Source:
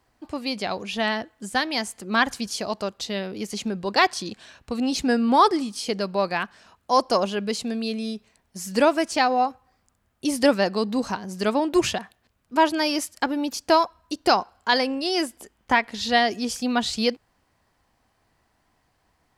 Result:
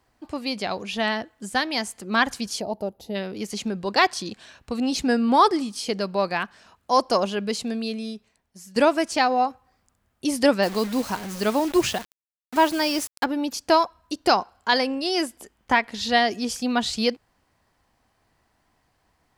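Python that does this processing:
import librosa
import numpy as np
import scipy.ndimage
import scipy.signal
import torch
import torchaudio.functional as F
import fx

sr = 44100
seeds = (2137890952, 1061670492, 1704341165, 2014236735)

y = fx.spec_box(x, sr, start_s=2.61, length_s=0.54, low_hz=960.0, high_hz=10000.0, gain_db=-16)
y = fx.quant_dither(y, sr, seeds[0], bits=6, dither='none', at=(10.62, 13.23), fade=0.02)
y = fx.edit(y, sr, fx.fade_out_to(start_s=7.73, length_s=1.03, floor_db=-14.0), tone=tone)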